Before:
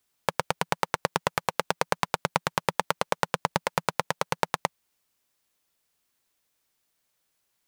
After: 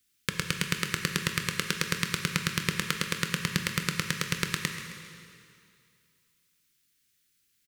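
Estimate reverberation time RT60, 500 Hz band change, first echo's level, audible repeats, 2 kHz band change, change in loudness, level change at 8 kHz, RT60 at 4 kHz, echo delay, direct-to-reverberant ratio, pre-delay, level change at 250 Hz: 2.4 s, -10.0 dB, -15.5 dB, 2, +1.5 dB, -0.5 dB, +4.0 dB, 2.2 s, 133 ms, 4.5 dB, 6 ms, +4.5 dB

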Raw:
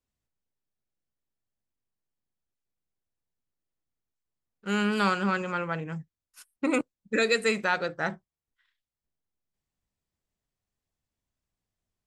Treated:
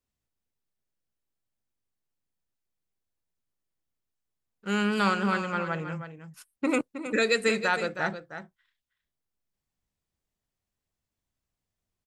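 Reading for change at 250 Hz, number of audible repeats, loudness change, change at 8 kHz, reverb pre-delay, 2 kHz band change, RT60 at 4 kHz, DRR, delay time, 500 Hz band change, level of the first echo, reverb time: +0.5 dB, 1, +0.5 dB, +0.5 dB, no reverb, +0.5 dB, no reverb, no reverb, 317 ms, +0.5 dB, -10.5 dB, no reverb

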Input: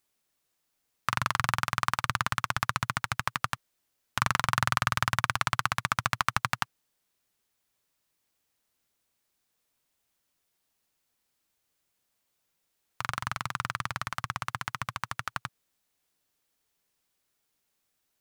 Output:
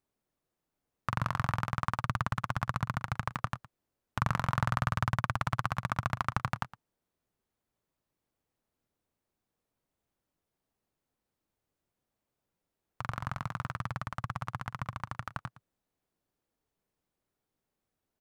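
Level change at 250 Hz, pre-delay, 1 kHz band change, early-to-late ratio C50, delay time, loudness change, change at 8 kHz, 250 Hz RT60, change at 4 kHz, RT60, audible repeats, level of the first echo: +2.5 dB, no reverb, -4.5 dB, no reverb, 113 ms, -4.0 dB, -13.5 dB, no reverb, -11.5 dB, no reverb, 1, -17.5 dB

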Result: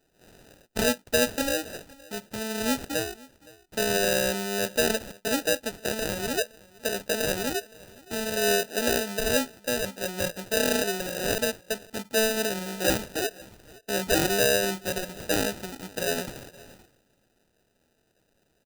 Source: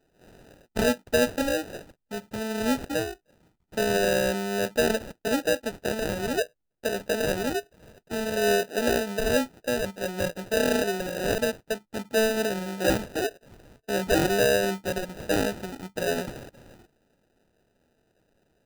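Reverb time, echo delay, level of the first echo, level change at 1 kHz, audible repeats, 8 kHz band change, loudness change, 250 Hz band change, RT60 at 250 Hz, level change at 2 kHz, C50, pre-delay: no reverb, 517 ms, -23.0 dB, -1.5 dB, 1, +5.0 dB, 0.0 dB, -2.5 dB, no reverb, +0.5 dB, no reverb, no reverb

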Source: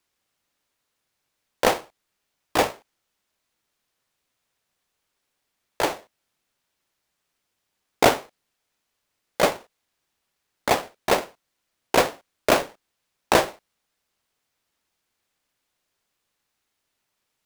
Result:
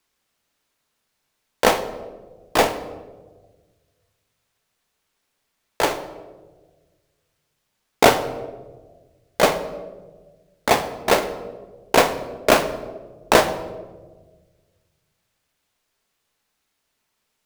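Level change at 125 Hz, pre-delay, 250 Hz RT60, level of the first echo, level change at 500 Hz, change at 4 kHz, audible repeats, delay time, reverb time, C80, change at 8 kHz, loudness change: +4.0 dB, 5 ms, 1.8 s, no echo, +4.0 dB, +3.5 dB, no echo, no echo, 1.4 s, 14.0 dB, +3.5 dB, +3.0 dB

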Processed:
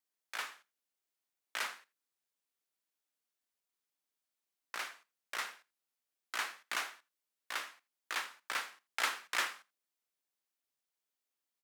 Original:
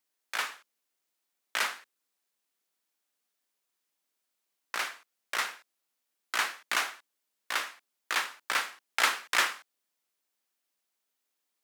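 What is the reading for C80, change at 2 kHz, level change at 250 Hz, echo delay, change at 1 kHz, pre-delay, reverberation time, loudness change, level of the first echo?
no reverb, -8.0 dB, -8.0 dB, 83 ms, -8.0 dB, no reverb, no reverb, -8.0 dB, -22.5 dB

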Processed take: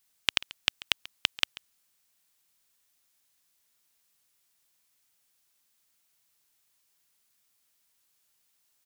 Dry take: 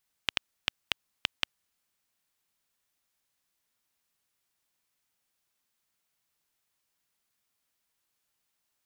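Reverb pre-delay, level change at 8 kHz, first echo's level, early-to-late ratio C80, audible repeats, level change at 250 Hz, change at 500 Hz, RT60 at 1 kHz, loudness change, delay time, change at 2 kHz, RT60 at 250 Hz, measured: no reverb, +8.0 dB, -19.5 dB, no reverb, 1, +1.5 dB, +2.0 dB, no reverb, +5.0 dB, 138 ms, +4.0 dB, no reverb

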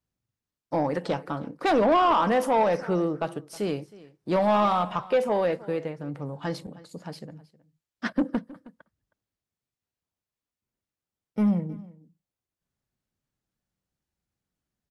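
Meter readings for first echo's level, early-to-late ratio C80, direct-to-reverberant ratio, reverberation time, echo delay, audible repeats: -20.5 dB, no reverb, no reverb, no reverb, 316 ms, 1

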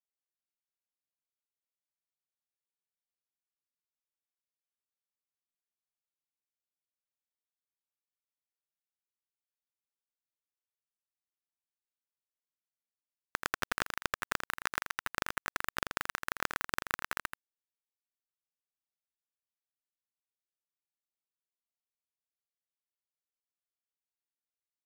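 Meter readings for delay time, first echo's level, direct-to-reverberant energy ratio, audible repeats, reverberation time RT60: 83 ms, -8.0 dB, no reverb, 1, no reverb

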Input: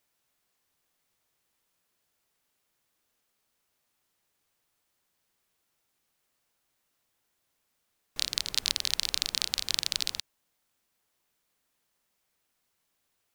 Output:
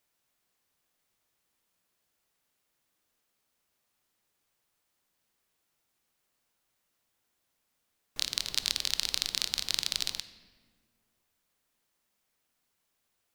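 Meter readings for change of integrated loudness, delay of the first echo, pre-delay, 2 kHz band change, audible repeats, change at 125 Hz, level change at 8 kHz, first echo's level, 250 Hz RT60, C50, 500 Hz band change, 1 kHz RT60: -1.5 dB, no echo, 16 ms, -1.5 dB, no echo, -1.0 dB, -1.5 dB, no echo, 2.2 s, 14.0 dB, -1.0 dB, 1.5 s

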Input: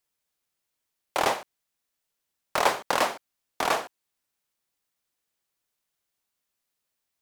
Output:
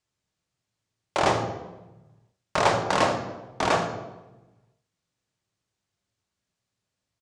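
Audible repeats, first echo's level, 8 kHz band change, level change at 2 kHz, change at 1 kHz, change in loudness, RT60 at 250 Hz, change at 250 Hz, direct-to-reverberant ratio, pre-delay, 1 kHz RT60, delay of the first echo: 1, -13.5 dB, -1.0 dB, +1.0 dB, +2.0 dB, +2.0 dB, 1.4 s, +8.0 dB, 3.5 dB, 3 ms, 1.0 s, 78 ms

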